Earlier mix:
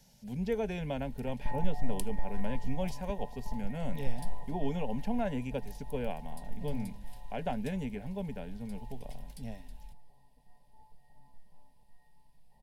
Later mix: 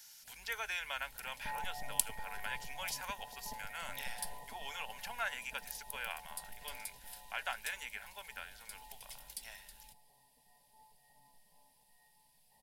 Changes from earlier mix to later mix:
speech: add resonant high-pass 1.3 kHz, resonance Q 3.3; master: add tilt EQ +3.5 dB/octave

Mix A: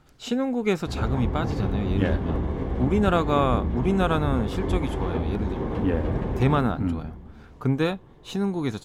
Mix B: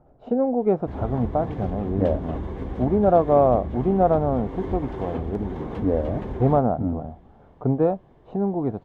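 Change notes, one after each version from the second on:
speech: add resonant low-pass 670 Hz, resonance Q 3.5; background: send -10.5 dB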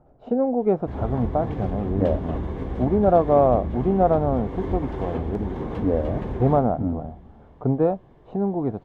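background: send +7.0 dB

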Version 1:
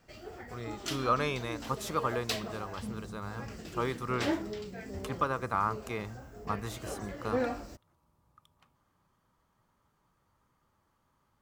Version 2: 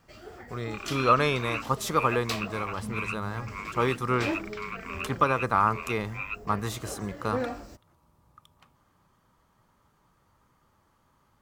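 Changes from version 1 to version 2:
speech +7.0 dB; second sound: unmuted

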